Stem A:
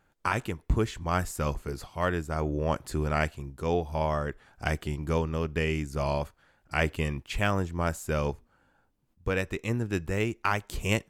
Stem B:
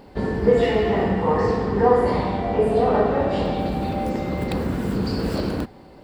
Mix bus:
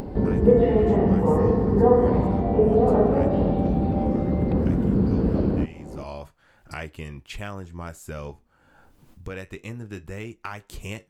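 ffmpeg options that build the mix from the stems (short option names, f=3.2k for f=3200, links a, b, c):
-filter_complex "[0:a]flanger=delay=8:depth=5.1:regen=-65:speed=0.29:shape=triangular,volume=-11.5dB[a];[1:a]acrossover=split=3500[b][c];[c]acompressor=threshold=-49dB:ratio=4:attack=1:release=60[d];[b][d]amix=inputs=2:normalize=0,tiltshelf=f=930:g=10,volume=-5.5dB[e];[a][e]amix=inputs=2:normalize=0,acompressor=mode=upward:threshold=-24dB:ratio=2.5"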